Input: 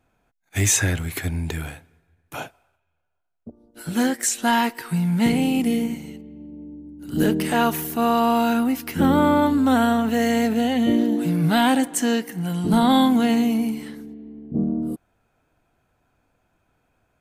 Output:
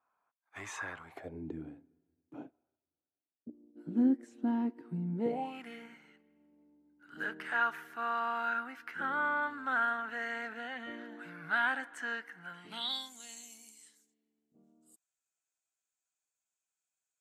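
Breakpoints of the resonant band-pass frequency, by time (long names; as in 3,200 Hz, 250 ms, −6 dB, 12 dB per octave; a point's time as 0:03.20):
resonant band-pass, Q 5
0:01.02 1,100 Hz
0:01.48 290 Hz
0:05.13 290 Hz
0:05.59 1,500 Hz
0:12.53 1,500 Hz
0:13.13 7,300 Hz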